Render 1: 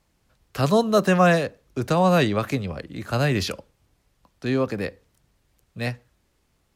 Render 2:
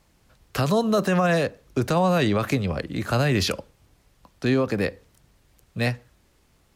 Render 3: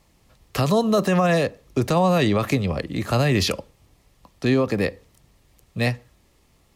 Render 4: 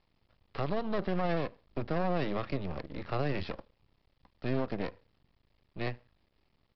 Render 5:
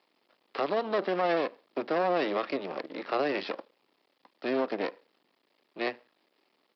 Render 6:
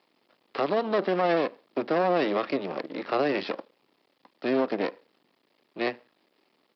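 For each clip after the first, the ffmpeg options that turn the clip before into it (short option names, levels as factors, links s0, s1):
-filter_complex "[0:a]asplit=2[s0][s1];[s1]acompressor=threshold=0.0398:ratio=6,volume=1[s2];[s0][s2]amix=inputs=2:normalize=0,alimiter=limit=0.251:level=0:latency=1:release=48"
-af "bandreject=f=1500:w=6.4,volume=1.26"
-filter_complex "[0:a]acrossover=split=3000[s0][s1];[s1]acompressor=threshold=0.00501:ratio=4:attack=1:release=60[s2];[s0][s2]amix=inputs=2:normalize=0,aresample=11025,aeval=exprs='max(val(0),0)':c=same,aresample=44100,volume=0.355"
-af "highpass=f=280:w=0.5412,highpass=f=280:w=1.3066,volume=2"
-af "lowshelf=f=190:g=9.5,volume=1.26"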